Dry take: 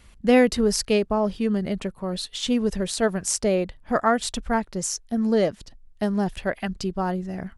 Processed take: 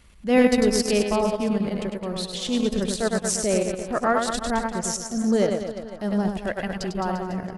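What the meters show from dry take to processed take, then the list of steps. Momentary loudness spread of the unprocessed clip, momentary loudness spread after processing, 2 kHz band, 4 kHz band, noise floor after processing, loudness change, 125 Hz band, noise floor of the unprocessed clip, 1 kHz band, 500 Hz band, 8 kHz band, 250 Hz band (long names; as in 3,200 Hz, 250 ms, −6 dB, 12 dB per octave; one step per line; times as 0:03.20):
9 LU, 9 LU, 0.0 dB, 0.0 dB, −40 dBFS, 0.0 dB, 0.0 dB, −52 dBFS, 0.0 dB, 0.0 dB, +0.5 dB, +0.5 dB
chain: reverse bouncing-ball delay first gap 100 ms, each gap 1.15×, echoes 5
transient designer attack −7 dB, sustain −11 dB
delay with a band-pass on its return 678 ms, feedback 71%, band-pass 850 Hz, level −21 dB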